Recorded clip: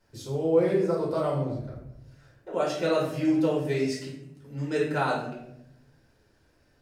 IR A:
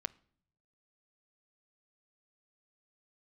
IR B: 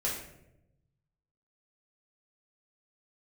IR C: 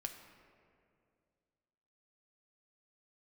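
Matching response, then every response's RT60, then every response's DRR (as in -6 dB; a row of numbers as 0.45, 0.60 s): B; 0.60, 0.85, 2.3 s; 14.5, -5.0, 4.0 dB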